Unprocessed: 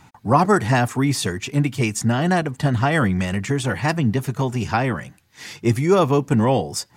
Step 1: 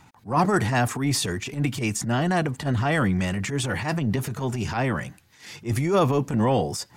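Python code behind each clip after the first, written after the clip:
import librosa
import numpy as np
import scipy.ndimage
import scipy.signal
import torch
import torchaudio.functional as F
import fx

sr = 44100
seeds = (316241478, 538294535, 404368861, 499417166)

y = fx.transient(x, sr, attack_db=-12, sustain_db=5)
y = y * librosa.db_to_amplitude(-3.0)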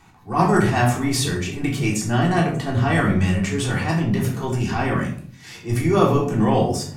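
y = fx.room_shoebox(x, sr, seeds[0], volume_m3=560.0, walls='furnished', distance_m=3.5)
y = y * librosa.db_to_amplitude(-2.0)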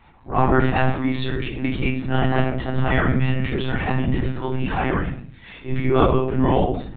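y = fx.lpc_monotone(x, sr, seeds[1], pitch_hz=130.0, order=16)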